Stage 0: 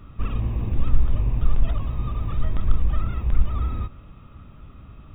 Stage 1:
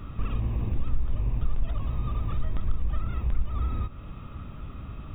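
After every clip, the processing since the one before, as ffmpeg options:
ffmpeg -i in.wav -af "acompressor=threshold=-35dB:ratio=2,volume=5dB" out.wav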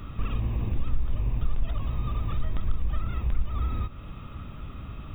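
ffmpeg -i in.wav -af "highshelf=frequency=2800:gain=6.5" out.wav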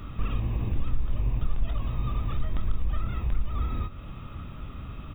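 ffmpeg -i in.wav -filter_complex "[0:a]asplit=2[link_01][link_02];[link_02]adelay=24,volume=-11.5dB[link_03];[link_01][link_03]amix=inputs=2:normalize=0" out.wav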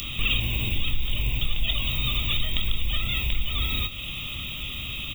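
ffmpeg -i in.wav -af "aexciter=amount=13.7:drive=8.5:freq=2400" out.wav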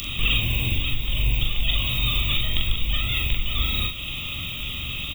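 ffmpeg -i in.wav -filter_complex "[0:a]asplit=2[link_01][link_02];[link_02]adelay=42,volume=-3.5dB[link_03];[link_01][link_03]amix=inputs=2:normalize=0,volume=1dB" out.wav

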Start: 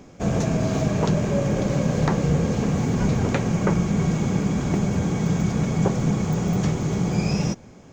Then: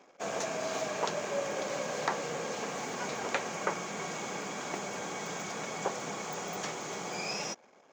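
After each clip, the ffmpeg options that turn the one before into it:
ffmpeg -i in.wav -af "highpass=660,anlmdn=0.000631,volume=-2.5dB" out.wav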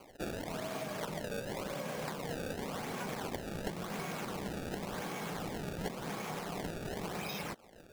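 ffmpeg -i in.wav -filter_complex "[0:a]acrossover=split=220[link_01][link_02];[link_02]acompressor=threshold=-43dB:ratio=6[link_03];[link_01][link_03]amix=inputs=2:normalize=0,acrusher=samples=24:mix=1:aa=0.000001:lfo=1:lforange=38.4:lforate=0.92,volume=4.5dB" out.wav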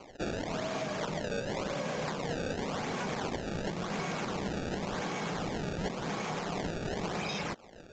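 ffmpeg -i in.wav -af "asoftclip=type=hard:threshold=-33dB,aresample=16000,aresample=44100,volume=5dB" out.wav

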